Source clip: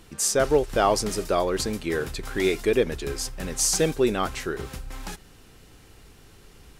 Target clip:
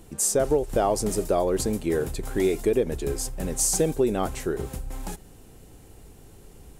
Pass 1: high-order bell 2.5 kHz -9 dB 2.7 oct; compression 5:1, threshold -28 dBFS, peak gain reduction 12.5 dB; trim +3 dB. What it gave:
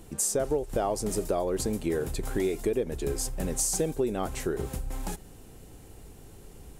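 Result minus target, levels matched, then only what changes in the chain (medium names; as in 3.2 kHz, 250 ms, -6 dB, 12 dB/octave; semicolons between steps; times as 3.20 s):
compression: peak gain reduction +5.5 dB
change: compression 5:1, threshold -21 dBFS, peak gain reduction 7 dB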